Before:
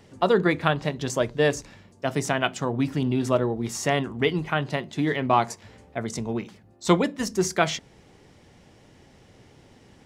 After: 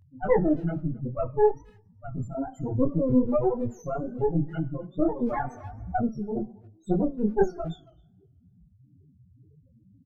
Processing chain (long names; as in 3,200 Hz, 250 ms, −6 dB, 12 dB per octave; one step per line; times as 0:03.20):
brickwall limiter −13 dBFS, peak gain reduction 9.5 dB
spectral peaks only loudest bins 1
harmonic generator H 4 −8 dB, 7 −42 dB, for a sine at −21 dBFS
tilt shelving filter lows +7.5 dB, about 1,200 Hz
coupled-rooms reverb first 0.63 s, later 2 s, from −26 dB, DRR 15.5 dB
tape wow and flutter 120 cents
far-end echo of a speakerphone 270 ms, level −24 dB
multi-voice chorus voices 2, 1.1 Hz, delay 20 ms, depth 3.9 ms
0:01.51–0:02.35: parametric band 530 Hz −10 dB 1.5 octaves
0:05.05–0:06.09: multiband upward and downward compressor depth 100%
level +4.5 dB